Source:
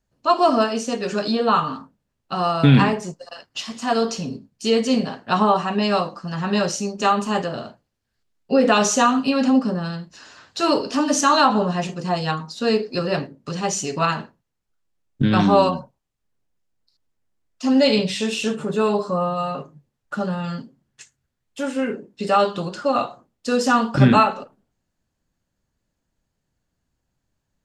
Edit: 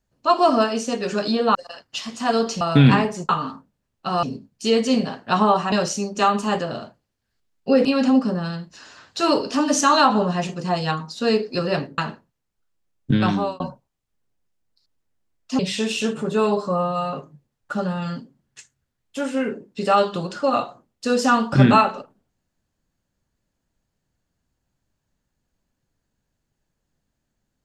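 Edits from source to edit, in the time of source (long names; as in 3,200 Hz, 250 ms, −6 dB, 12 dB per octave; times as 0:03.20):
0:01.55–0:02.49: swap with 0:03.17–0:04.23
0:05.72–0:06.55: remove
0:08.68–0:09.25: remove
0:13.38–0:14.09: remove
0:15.26–0:15.71: fade out
0:17.70–0:18.01: remove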